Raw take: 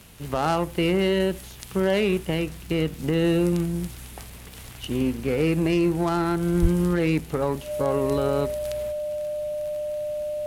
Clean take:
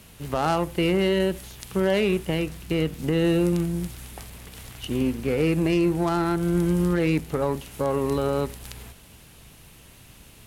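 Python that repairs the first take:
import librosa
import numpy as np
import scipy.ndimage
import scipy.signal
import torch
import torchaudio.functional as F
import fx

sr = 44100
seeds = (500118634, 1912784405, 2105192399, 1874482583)

y = fx.fix_declick_ar(x, sr, threshold=6.5)
y = fx.notch(y, sr, hz=600.0, q=30.0)
y = fx.highpass(y, sr, hz=140.0, slope=24, at=(6.61, 6.73), fade=0.02)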